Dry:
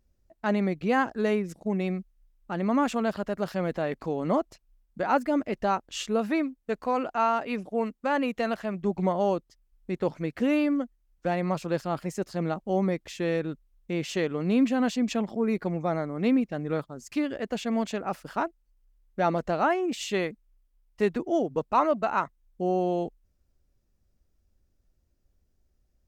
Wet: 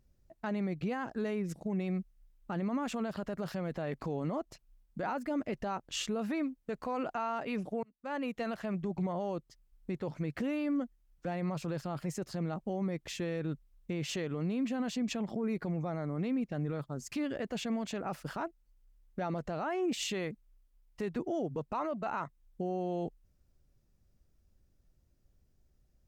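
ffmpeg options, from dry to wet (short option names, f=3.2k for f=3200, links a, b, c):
-filter_complex "[0:a]asplit=2[a][b];[a]atrim=end=7.83,asetpts=PTS-STARTPTS,afade=t=out:st=7.826:d=0.004:c=hsin[c];[b]atrim=start=7.83,asetpts=PTS-STARTPTS,afade=t=in:d=1.11[d];[c][d]concat=n=2:v=0:a=1,equalizer=f=140:t=o:w=0.69:g=6.5,acompressor=threshold=-29dB:ratio=3,alimiter=level_in=2.5dB:limit=-24dB:level=0:latency=1:release=13,volume=-2.5dB"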